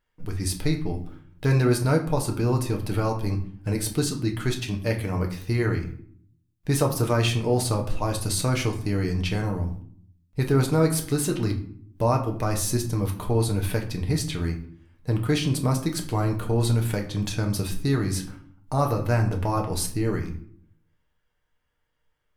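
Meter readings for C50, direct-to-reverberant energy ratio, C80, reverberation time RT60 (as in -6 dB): 10.5 dB, 2.0 dB, 14.0 dB, 0.60 s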